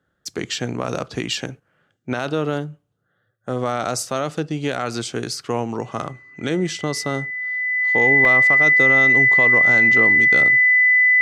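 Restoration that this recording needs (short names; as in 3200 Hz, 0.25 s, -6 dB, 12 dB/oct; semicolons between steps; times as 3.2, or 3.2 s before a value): notch 2000 Hz, Q 30; interpolate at 8.25, 1.4 ms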